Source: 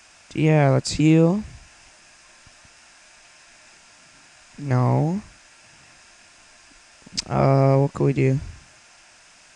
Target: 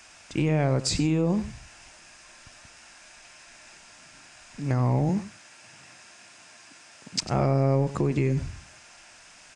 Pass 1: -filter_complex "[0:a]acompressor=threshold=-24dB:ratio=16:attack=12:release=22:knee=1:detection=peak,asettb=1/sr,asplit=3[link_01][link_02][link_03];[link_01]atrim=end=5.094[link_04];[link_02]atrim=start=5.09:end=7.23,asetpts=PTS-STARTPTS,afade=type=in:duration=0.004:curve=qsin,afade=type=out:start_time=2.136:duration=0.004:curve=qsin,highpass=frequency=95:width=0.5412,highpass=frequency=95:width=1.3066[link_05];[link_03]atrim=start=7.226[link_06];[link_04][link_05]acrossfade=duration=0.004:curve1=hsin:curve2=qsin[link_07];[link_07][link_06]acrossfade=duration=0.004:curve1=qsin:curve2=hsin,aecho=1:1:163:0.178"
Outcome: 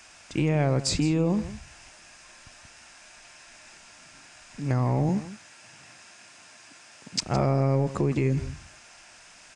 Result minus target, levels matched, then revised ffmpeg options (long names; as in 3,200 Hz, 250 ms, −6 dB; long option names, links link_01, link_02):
echo 67 ms late
-filter_complex "[0:a]acompressor=threshold=-24dB:ratio=16:attack=12:release=22:knee=1:detection=peak,asettb=1/sr,asplit=3[link_01][link_02][link_03];[link_01]atrim=end=5.094[link_04];[link_02]atrim=start=5.09:end=7.23,asetpts=PTS-STARTPTS,afade=type=in:duration=0.004:curve=qsin,afade=type=out:start_time=2.136:duration=0.004:curve=qsin,highpass=frequency=95:width=0.5412,highpass=frequency=95:width=1.3066[link_05];[link_03]atrim=start=7.226[link_06];[link_04][link_05]acrossfade=duration=0.004:curve1=hsin:curve2=qsin[link_07];[link_07][link_06]acrossfade=duration=0.004:curve1=qsin:curve2=hsin,aecho=1:1:96:0.178"